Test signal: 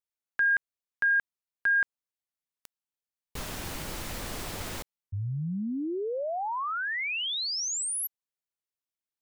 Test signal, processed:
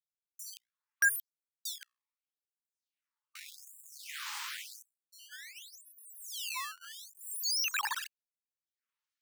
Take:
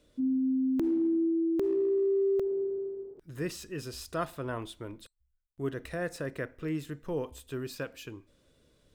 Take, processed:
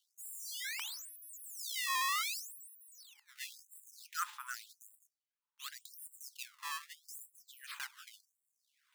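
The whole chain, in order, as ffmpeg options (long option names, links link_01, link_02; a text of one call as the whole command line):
ffmpeg -i in.wav -af "bandreject=frequency=60:width_type=h:width=6,bandreject=frequency=120:width_type=h:width=6,bandreject=frequency=180:width_type=h:width=6,bandreject=frequency=240:width_type=h:width=6,bandreject=frequency=300:width_type=h:width=6,bandreject=frequency=360:width_type=h:width=6,acrusher=samples=17:mix=1:aa=0.000001:lfo=1:lforange=27.2:lforate=0.63,afftfilt=real='re*gte(b*sr/1024,800*pow(7300/800,0.5+0.5*sin(2*PI*0.86*pts/sr)))':imag='im*gte(b*sr/1024,800*pow(7300/800,0.5+0.5*sin(2*PI*0.86*pts/sr)))':win_size=1024:overlap=0.75" out.wav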